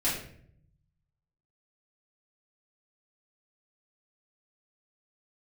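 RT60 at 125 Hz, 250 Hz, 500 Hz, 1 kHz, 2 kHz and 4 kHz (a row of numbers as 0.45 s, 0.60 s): 1.5 s, 1.0 s, 0.70 s, 0.50 s, 0.55 s, 0.45 s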